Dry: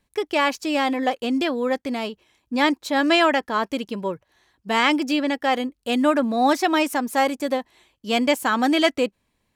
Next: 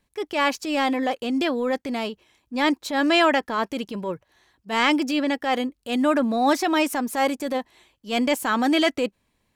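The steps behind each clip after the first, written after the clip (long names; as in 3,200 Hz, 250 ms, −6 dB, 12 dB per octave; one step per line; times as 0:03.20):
transient designer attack −7 dB, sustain +1 dB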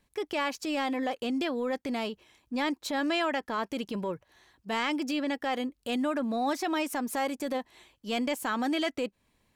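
downward compressor 2.5 to 1, threshold −31 dBFS, peak gain reduction 11 dB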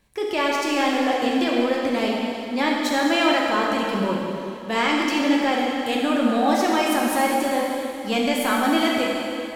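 dense smooth reverb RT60 2.8 s, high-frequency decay 0.95×, DRR −3 dB
level +5.5 dB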